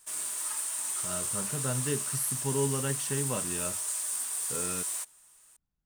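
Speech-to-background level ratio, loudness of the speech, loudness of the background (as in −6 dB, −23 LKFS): −4.0 dB, −35.0 LKFS, −31.0 LKFS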